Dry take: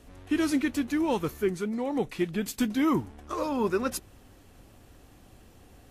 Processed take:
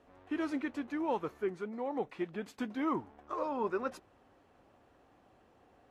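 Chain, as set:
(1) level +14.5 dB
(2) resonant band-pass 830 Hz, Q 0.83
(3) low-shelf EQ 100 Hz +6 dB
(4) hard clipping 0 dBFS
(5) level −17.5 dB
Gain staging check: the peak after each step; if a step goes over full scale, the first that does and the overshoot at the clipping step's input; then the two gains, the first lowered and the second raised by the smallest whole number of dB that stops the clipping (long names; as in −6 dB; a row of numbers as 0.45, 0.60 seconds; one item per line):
−0.5, −5.0, −4.5, −4.5, −22.0 dBFS
no step passes full scale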